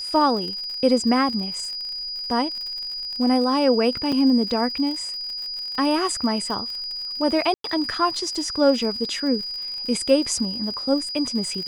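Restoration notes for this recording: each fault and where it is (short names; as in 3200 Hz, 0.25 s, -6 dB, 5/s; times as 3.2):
crackle 61/s -30 dBFS
tone 4900 Hz -28 dBFS
4.12 gap 4.9 ms
7.54–7.64 gap 0.103 s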